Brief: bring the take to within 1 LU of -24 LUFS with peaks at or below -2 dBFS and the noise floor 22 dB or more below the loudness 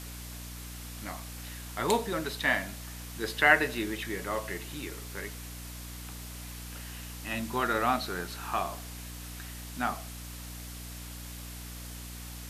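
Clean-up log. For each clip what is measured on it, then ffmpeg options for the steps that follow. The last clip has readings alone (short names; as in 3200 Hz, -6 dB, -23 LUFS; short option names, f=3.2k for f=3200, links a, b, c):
hum 60 Hz; harmonics up to 300 Hz; hum level -41 dBFS; noise floor -42 dBFS; noise floor target -55 dBFS; loudness -33.0 LUFS; peak -7.0 dBFS; loudness target -24.0 LUFS
-> -af "bandreject=f=60:t=h:w=4,bandreject=f=120:t=h:w=4,bandreject=f=180:t=h:w=4,bandreject=f=240:t=h:w=4,bandreject=f=300:t=h:w=4"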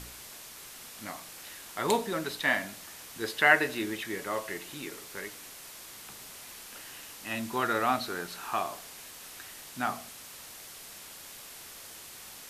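hum none; noise floor -47 dBFS; noise floor target -54 dBFS
-> -af "afftdn=nr=7:nf=-47"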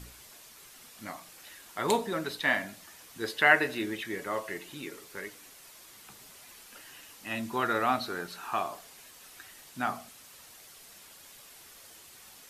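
noise floor -53 dBFS; loudness -31.0 LUFS; peak -7.5 dBFS; loudness target -24.0 LUFS
-> -af "volume=7dB,alimiter=limit=-2dB:level=0:latency=1"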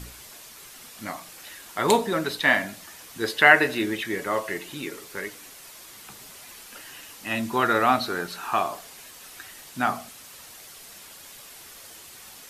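loudness -24.0 LUFS; peak -2.0 dBFS; noise floor -46 dBFS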